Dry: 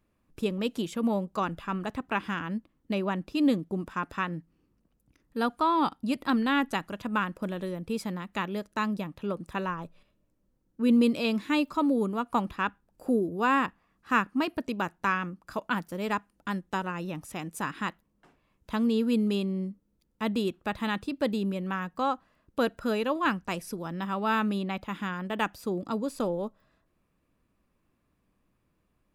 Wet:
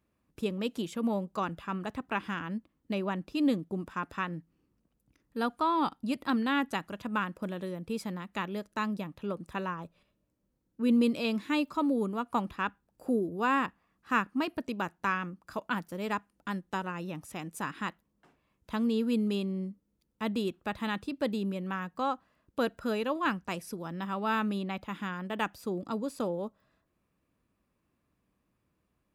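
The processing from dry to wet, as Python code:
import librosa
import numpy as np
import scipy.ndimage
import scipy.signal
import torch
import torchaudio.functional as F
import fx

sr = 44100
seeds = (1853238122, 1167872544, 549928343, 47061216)

y = scipy.signal.sosfilt(scipy.signal.butter(2, 43.0, 'highpass', fs=sr, output='sos'), x)
y = y * librosa.db_to_amplitude(-3.0)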